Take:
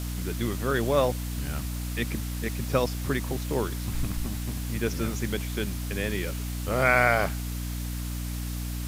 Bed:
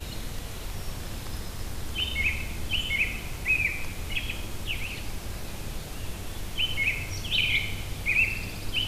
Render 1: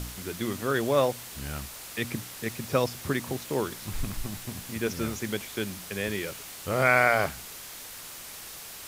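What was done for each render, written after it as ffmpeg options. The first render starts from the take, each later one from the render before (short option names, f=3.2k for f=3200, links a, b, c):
-af "bandreject=f=60:t=h:w=4,bandreject=f=120:t=h:w=4,bandreject=f=180:t=h:w=4,bandreject=f=240:t=h:w=4,bandreject=f=300:t=h:w=4"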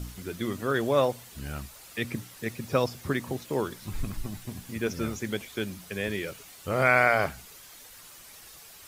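-af "afftdn=nr=9:nf=-43"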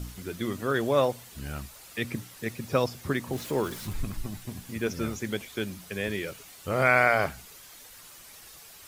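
-filter_complex "[0:a]asettb=1/sr,asplit=3[a][b][c];[a]atrim=end=3.334[d];[b]atrim=start=3.33:end=3.93,asetpts=PTS-STARTPTS,afade=t=in:d=0.004:c=qsin,afade=t=out:st=0.596:d=0.004:c=qsin,aeval=exprs='val(0)+0.5*0.0119*sgn(val(0))':c=same[e];[c]atrim=start=3.926[f];[d][e]acrossfade=d=0.004:c1=hsin:c2=qsin[g];[g][f]acrossfade=d=0.004:c1=qsin:c2=hsin"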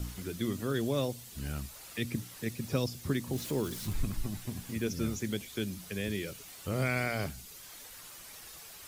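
-filter_complex "[0:a]acrossover=split=360|3000[a][b][c];[b]acompressor=threshold=-50dB:ratio=2[d];[a][d][c]amix=inputs=3:normalize=0"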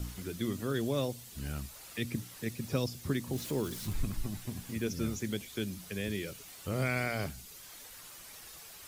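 -af "volume=-1dB"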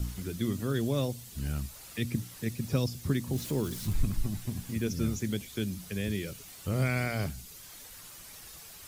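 -af "bass=f=250:g=6,treble=f=4k:g=2"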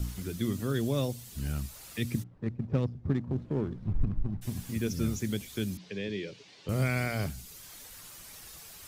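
-filter_complex "[0:a]asplit=3[a][b][c];[a]afade=t=out:st=2.22:d=0.02[d];[b]adynamicsmooth=sensitivity=3:basefreq=520,afade=t=in:st=2.22:d=0.02,afade=t=out:st=4.41:d=0.02[e];[c]afade=t=in:st=4.41:d=0.02[f];[d][e][f]amix=inputs=3:normalize=0,asettb=1/sr,asplit=3[g][h][i];[g]atrim=end=5.774[j];[h]atrim=start=5.77:end=6.69,asetpts=PTS-STARTPTS,afade=t=in:d=0.004:c=qsin,afade=t=out:st=0.916:d=0.004:c=qsin,highpass=f=130:w=0.5412,highpass=f=130:w=1.3066,equalizer=f=150:t=q:w=4:g=-8,equalizer=f=230:t=q:w=4:g=-5,equalizer=f=430:t=q:w=4:g=4,equalizer=f=690:t=q:w=4:g=-4,equalizer=f=1.3k:t=q:w=4:g=-10,lowpass=f=4.9k:w=0.5412,lowpass=f=4.9k:w=1.3066[k];[i]atrim=start=6.686[l];[j][k]acrossfade=d=0.004:c1=hsin:c2=qsin[m];[m][l]acrossfade=d=0.004:c1=qsin:c2=hsin"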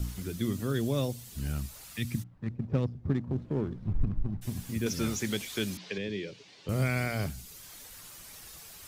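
-filter_complex "[0:a]asettb=1/sr,asplit=3[a][b][c];[a]atrim=end=1.844[d];[b]atrim=start=1.84:end=2.5,asetpts=PTS-STARTPTS,afade=t=in:d=0.004:c=qsin,afade=t=out:st=0.656:d=0.004:c=qsin,equalizer=f=430:w=1.5:g=-9.5[e];[c]atrim=start=2.496[f];[d][e]acrossfade=d=0.004:c1=hsin:c2=qsin[g];[g][f]acrossfade=d=0.004:c1=qsin:c2=hsin,asettb=1/sr,asplit=3[h][i][j];[h]atrim=end=4.864[k];[i]atrim=start=4.86:end=5.98,asetpts=PTS-STARTPTS,afade=t=in:d=0.004:c=qsin,afade=t=out:st=1.116:d=0.004:c=qsin,asplit=2[l][m];[m]highpass=f=720:p=1,volume=14dB,asoftclip=type=tanh:threshold=-18dB[n];[l][n]amix=inputs=2:normalize=0,lowpass=f=5.7k:p=1,volume=-6dB[o];[j]atrim=start=5.976[p];[k][o]acrossfade=d=0.004:c1=hsin:c2=qsin[q];[q][p]acrossfade=d=0.004:c1=qsin:c2=hsin"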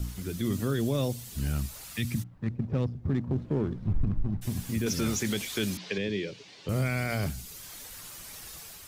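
-af "alimiter=limit=-23.5dB:level=0:latency=1:release=10,dynaudnorm=f=130:g=5:m=4dB"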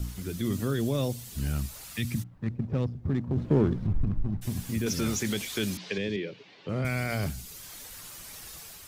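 -filter_complex "[0:a]asettb=1/sr,asplit=3[a][b][c];[a]atrim=end=3.374[d];[b]atrim=start=3.37:end=3.87,asetpts=PTS-STARTPTS,afade=t=in:d=0.004:c=qsin,afade=t=out:st=0.496:d=0.004:c=qsin,acontrast=50[e];[c]atrim=start=3.866[f];[d][e]acrossfade=d=0.004:c1=hsin:c2=qsin[g];[g][f]acrossfade=d=0.004:c1=qsin:c2=hsin,asettb=1/sr,asplit=3[h][i][j];[h]atrim=end=6.164[k];[i]atrim=start=6.16:end=6.85,asetpts=PTS-STARTPTS,afade=t=in:d=0.004:c=qsin,afade=t=out:st=0.686:d=0.004:c=qsin,highpass=130,lowpass=3.1k[l];[j]atrim=start=6.846[m];[k][l]acrossfade=d=0.004:c1=hsin:c2=qsin[n];[n][m]acrossfade=d=0.004:c1=qsin:c2=hsin"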